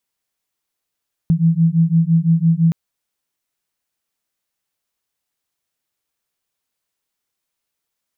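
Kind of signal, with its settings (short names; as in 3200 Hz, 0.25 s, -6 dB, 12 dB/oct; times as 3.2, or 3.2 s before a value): beating tones 162 Hz, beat 5.9 Hz, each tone -14.5 dBFS 1.42 s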